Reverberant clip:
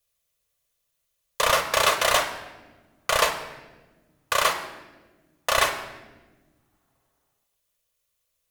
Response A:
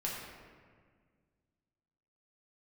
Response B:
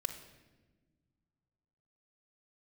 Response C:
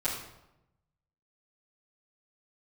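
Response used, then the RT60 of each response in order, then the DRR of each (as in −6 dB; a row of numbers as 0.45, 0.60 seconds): B; 1.8 s, non-exponential decay, 0.90 s; −4.5, 4.0, −12.0 decibels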